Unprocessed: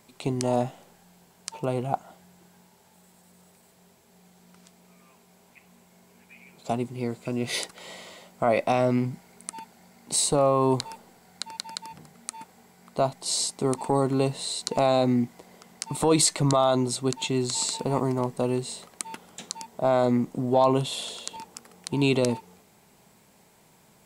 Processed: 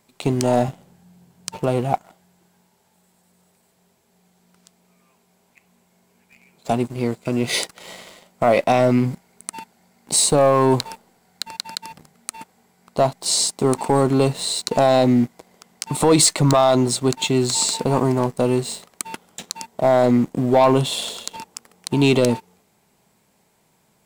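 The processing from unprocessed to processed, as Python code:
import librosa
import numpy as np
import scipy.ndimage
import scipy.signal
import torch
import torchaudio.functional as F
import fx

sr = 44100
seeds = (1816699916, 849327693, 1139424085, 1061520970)

y = fx.leveller(x, sr, passes=2)
y = fx.peak_eq(y, sr, hz=130.0, db=15.0, octaves=2.0, at=(0.68, 1.59))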